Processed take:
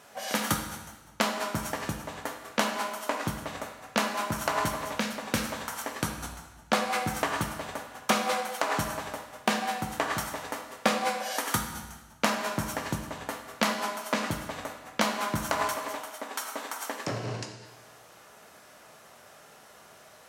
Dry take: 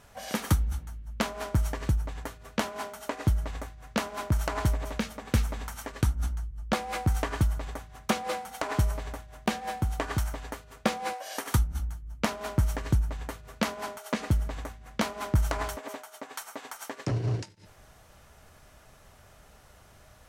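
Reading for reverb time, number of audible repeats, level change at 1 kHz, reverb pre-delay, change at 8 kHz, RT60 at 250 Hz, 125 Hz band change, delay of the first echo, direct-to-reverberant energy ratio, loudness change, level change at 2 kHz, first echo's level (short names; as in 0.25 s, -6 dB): 1.2 s, none, +5.0 dB, 14 ms, +5.0 dB, 1.2 s, -10.0 dB, none, 4.0 dB, +0.5 dB, +5.5 dB, none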